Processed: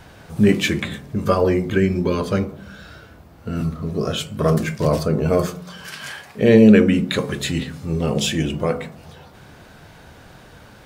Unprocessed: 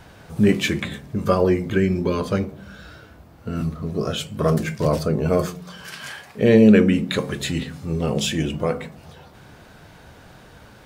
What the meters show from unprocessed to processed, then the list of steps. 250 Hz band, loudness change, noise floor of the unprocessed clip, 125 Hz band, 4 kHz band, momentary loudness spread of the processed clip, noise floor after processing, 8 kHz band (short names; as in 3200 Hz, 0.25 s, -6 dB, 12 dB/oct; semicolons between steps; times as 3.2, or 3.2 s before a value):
+1.5 dB, +1.5 dB, -47 dBFS, +1.5 dB, +2.0 dB, 18 LU, -45 dBFS, +2.0 dB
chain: de-hum 61.12 Hz, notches 24; gain +2 dB